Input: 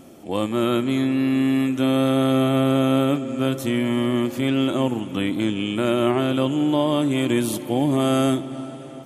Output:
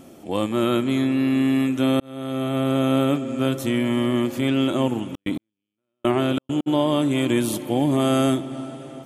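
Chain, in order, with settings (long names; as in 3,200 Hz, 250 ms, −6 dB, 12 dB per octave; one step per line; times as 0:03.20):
0:02.00–0:03.28: fade in equal-power
0:04.98–0:06.66: gate pattern "xx.x......x" 134 BPM −60 dB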